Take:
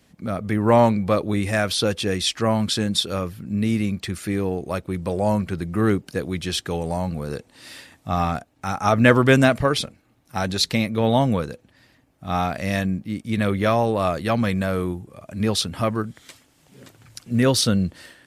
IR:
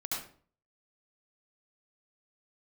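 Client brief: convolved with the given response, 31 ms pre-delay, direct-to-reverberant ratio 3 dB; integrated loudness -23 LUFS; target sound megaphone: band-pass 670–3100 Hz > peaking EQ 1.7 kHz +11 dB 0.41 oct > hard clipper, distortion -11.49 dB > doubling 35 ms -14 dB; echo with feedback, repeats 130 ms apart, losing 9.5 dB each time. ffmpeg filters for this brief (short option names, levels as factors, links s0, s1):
-filter_complex "[0:a]aecho=1:1:130|260|390|520:0.335|0.111|0.0365|0.012,asplit=2[s0][s1];[1:a]atrim=start_sample=2205,adelay=31[s2];[s1][s2]afir=irnorm=-1:irlink=0,volume=0.473[s3];[s0][s3]amix=inputs=2:normalize=0,highpass=670,lowpass=3100,equalizer=f=1700:t=o:w=0.41:g=11,asoftclip=type=hard:threshold=0.237,asplit=2[s4][s5];[s5]adelay=35,volume=0.2[s6];[s4][s6]amix=inputs=2:normalize=0,volume=1.06"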